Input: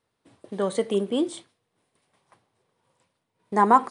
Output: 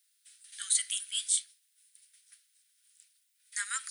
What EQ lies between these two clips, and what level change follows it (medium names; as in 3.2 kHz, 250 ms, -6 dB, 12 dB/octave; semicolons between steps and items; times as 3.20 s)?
steep high-pass 1.4 kHz 72 dB/octave; differentiator; treble shelf 3.7 kHz +8 dB; +7.5 dB